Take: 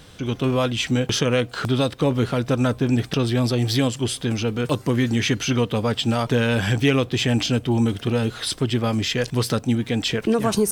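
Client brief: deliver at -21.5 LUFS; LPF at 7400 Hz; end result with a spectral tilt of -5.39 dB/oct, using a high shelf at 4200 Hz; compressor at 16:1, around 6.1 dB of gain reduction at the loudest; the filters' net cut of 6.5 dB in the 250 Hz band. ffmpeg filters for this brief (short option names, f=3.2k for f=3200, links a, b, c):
-af "lowpass=7.4k,equalizer=f=250:t=o:g=-7.5,highshelf=f=4.2k:g=-6.5,acompressor=threshold=-24dB:ratio=16,volume=7.5dB"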